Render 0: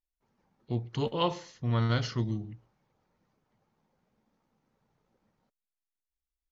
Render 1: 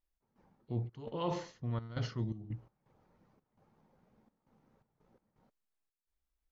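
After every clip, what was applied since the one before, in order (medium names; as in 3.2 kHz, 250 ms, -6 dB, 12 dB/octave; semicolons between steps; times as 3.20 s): treble shelf 2.1 kHz -10 dB; reverse; compression 6:1, threshold -39 dBFS, peak gain reduction 14.5 dB; reverse; trance gate "x.xxx.xxxx.xx." 84 bpm -12 dB; trim +6 dB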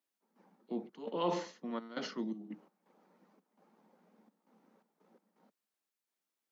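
steep high-pass 180 Hz 72 dB/octave; trim +3 dB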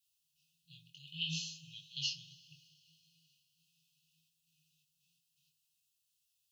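two-slope reverb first 0.2 s, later 3.5 s, from -22 dB, DRR 8 dB; chorus 0.68 Hz, delay 18.5 ms, depth 4.2 ms; FFT band-reject 170–2500 Hz; trim +12.5 dB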